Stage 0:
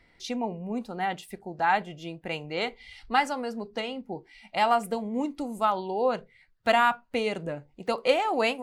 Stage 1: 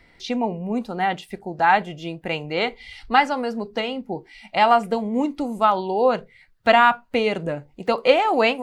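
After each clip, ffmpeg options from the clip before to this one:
-filter_complex "[0:a]acrossover=split=5100[a][b];[b]acompressor=threshold=-59dB:ratio=4:attack=1:release=60[c];[a][c]amix=inputs=2:normalize=0,volume=7dB"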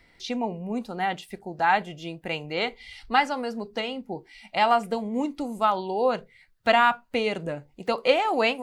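-af "highshelf=f=3.8k:g=5.5,volume=-5dB"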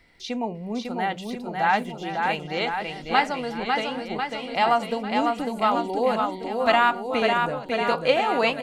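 -af "aecho=1:1:550|1045|1490|1891|2252:0.631|0.398|0.251|0.158|0.1"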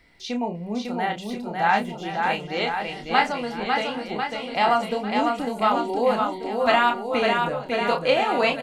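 -filter_complex "[0:a]asplit=2[a][b];[b]adelay=29,volume=-6dB[c];[a][c]amix=inputs=2:normalize=0"

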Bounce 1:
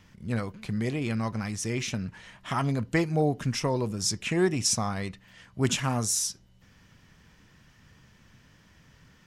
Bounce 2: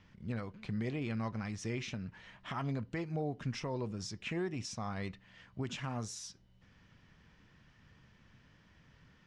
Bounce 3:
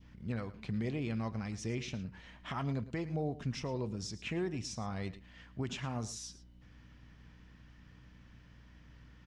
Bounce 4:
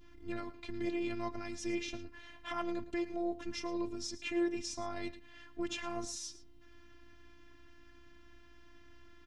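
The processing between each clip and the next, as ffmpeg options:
-af "alimiter=limit=-21dB:level=0:latency=1:release=361,lowpass=4.4k,volume=-5.5dB"
-af "aecho=1:1:110:0.158,aeval=exprs='val(0)+0.00126*(sin(2*PI*60*n/s)+sin(2*PI*2*60*n/s)/2+sin(2*PI*3*60*n/s)/3+sin(2*PI*4*60*n/s)/4+sin(2*PI*5*60*n/s)/5)':c=same,adynamicequalizer=threshold=0.00126:dfrequency=1500:dqfactor=0.92:tfrequency=1500:tqfactor=0.92:attack=5:release=100:ratio=0.375:range=2.5:mode=cutabove:tftype=bell,volume=1dB"
-af "afftfilt=real='hypot(re,im)*cos(PI*b)':imag='0':win_size=512:overlap=0.75,volume=5dB"

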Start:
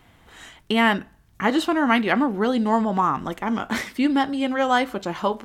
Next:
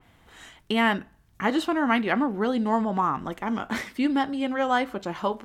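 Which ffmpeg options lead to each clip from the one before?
-af "adynamicequalizer=threshold=0.0141:dfrequency=3000:dqfactor=0.7:tfrequency=3000:tqfactor=0.7:attack=5:release=100:ratio=0.375:range=2.5:mode=cutabove:tftype=highshelf,volume=-3.5dB"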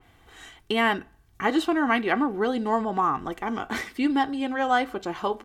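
-af "aecho=1:1:2.6:0.42"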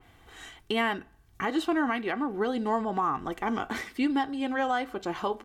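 -af "alimiter=limit=-18dB:level=0:latency=1:release=424"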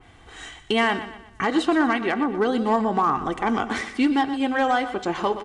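-filter_complex "[0:a]asoftclip=type=hard:threshold=-20dB,asplit=2[a][b];[b]aecho=0:1:121|242|363|484:0.237|0.0996|0.0418|0.0176[c];[a][c]amix=inputs=2:normalize=0,aresample=22050,aresample=44100,volume=6.5dB"

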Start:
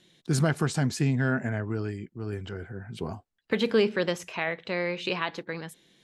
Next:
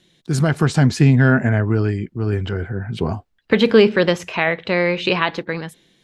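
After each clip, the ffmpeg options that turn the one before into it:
-filter_complex "[0:a]lowshelf=f=82:g=8,acrossover=split=5100[a][b];[a]dynaudnorm=f=160:g=7:m=9dB[c];[c][b]amix=inputs=2:normalize=0,volume=2.5dB"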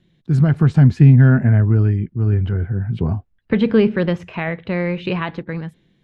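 -af "bass=f=250:g=12,treble=f=4k:g=-14,volume=-6dB"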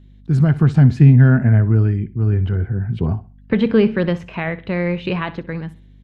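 -af "aecho=1:1:63|126|189:0.133|0.0413|0.0128,aeval=exprs='val(0)+0.00631*(sin(2*PI*50*n/s)+sin(2*PI*2*50*n/s)/2+sin(2*PI*3*50*n/s)/3+sin(2*PI*4*50*n/s)/4+sin(2*PI*5*50*n/s)/5)':c=same"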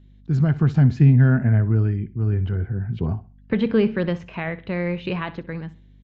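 -af "aresample=16000,aresample=44100,volume=-4.5dB"

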